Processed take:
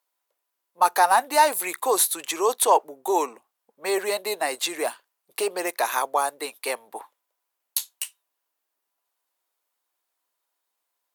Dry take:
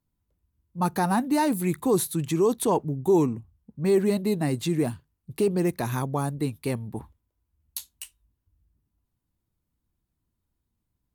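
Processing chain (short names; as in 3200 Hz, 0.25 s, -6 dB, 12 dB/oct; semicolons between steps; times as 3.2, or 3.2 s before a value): HPF 570 Hz 24 dB/oct; gain +9 dB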